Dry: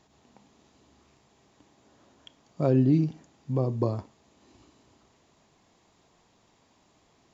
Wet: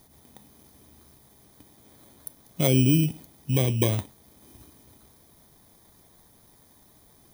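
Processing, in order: FFT order left unsorted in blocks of 16 samples; low shelf 140 Hz +10.5 dB; harmonic-percussive split harmonic -4 dB; high shelf 2600 Hz +8 dB; in parallel at -1 dB: limiter -19.5 dBFS, peak gain reduction 11.5 dB; on the sum: gain -1.5 dB

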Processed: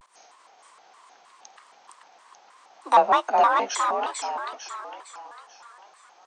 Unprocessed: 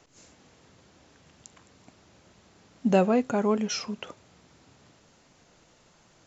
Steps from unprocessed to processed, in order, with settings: frequency shift +42 Hz; resonant high-pass 750 Hz, resonance Q 4; formant shift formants +3 st; frequency-shifting echo 0.451 s, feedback 47%, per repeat +33 Hz, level -3.5 dB; shaped vibrato square 3.2 Hz, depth 250 cents

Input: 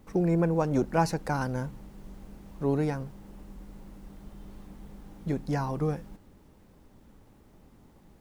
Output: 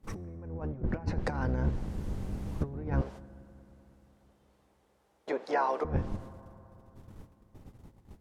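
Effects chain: octaver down 1 oct, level +3 dB; treble ducked by the level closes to 1800 Hz, closed at -19.5 dBFS; 3.01–5.85 HPF 450 Hz 24 dB/oct; gate -50 dBFS, range -19 dB; negative-ratio compressor -30 dBFS, ratio -0.5; reverb RT60 3.4 s, pre-delay 5 ms, DRR 17 dB

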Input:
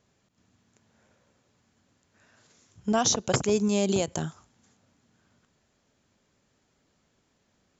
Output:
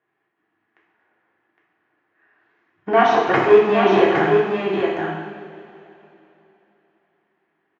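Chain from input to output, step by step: low shelf 330 Hz -8.5 dB; sample leveller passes 3; speaker cabinet 210–2500 Hz, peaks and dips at 230 Hz -5 dB, 330 Hz +10 dB, 550 Hz -8 dB, 780 Hz +6 dB, 1100 Hz +3 dB, 1800 Hz +8 dB; echo 0.812 s -5 dB; reverb, pre-delay 3 ms, DRR -4 dB

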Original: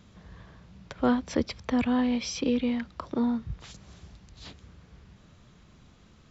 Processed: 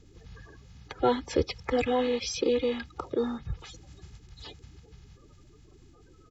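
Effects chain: bin magnitudes rounded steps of 30 dB; comb 2.4 ms, depth 67%

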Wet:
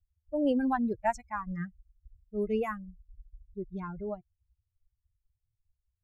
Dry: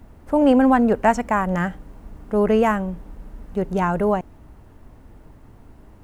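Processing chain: per-bin expansion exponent 3; low-pass opened by the level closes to 690 Hz, open at -18.5 dBFS; gain -8.5 dB

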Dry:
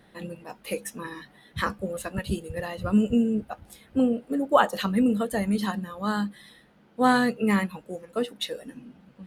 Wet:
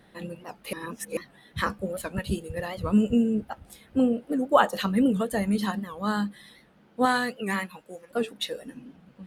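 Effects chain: 0.73–1.17 reverse; 7.05–8.11 low shelf 480 Hz -11 dB; record warp 78 rpm, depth 160 cents

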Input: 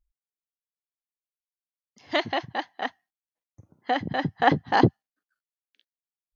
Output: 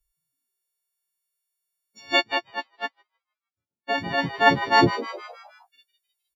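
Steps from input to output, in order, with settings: frequency quantiser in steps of 4 st; frequency-shifting echo 0.155 s, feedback 49%, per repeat +120 Hz, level -13 dB; 2.19–3.98 upward expander 2.5:1, over -42 dBFS

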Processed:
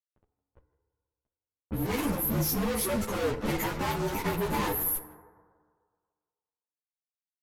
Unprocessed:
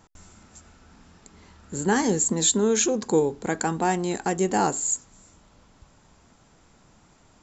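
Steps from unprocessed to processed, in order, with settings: inharmonic rescaling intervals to 115%; spectral gate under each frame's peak -30 dB strong; fuzz box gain 46 dB, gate -43 dBFS; EQ curve 110 Hz 0 dB, 160 Hz -6 dB, 670 Hz -9 dB; limiter -21 dBFS, peak gain reduction 7.5 dB; low-pass opened by the level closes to 720 Hz, open at -24 dBFS; speakerphone echo 0.16 s, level -18 dB; FDN reverb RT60 1.8 s, low-frequency decay 0.85×, high-frequency decay 0.3×, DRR 9 dB; ensemble effect

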